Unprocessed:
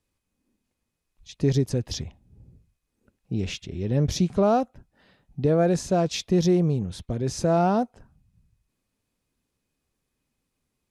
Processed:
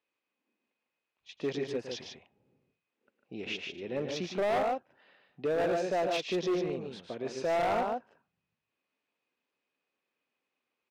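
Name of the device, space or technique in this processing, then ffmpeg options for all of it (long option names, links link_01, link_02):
megaphone: -af "highpass=450,lowpass=3200,equalizer=frequency=2600:width_type=o:width=0.48:gain=5,aecho=1:1:110.8|148.7:0.316|0.562,asoftclip=type=hard:threshold=-23dB,volume=-2.5dB"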